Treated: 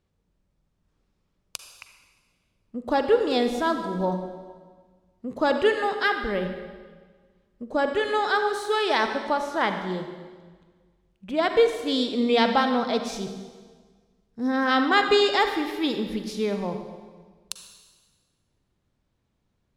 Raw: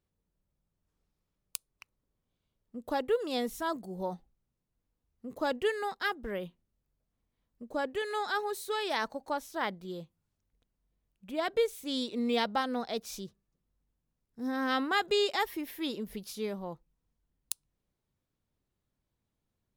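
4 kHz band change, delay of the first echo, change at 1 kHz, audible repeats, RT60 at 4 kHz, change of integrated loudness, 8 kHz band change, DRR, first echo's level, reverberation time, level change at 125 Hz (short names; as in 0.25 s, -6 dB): +8.0 dB, none, +9.5 dB, none, 1.4 s, +9.5 dB, +2.5 dB, 6.0 dB, none, 1.5 s, +11.5 dB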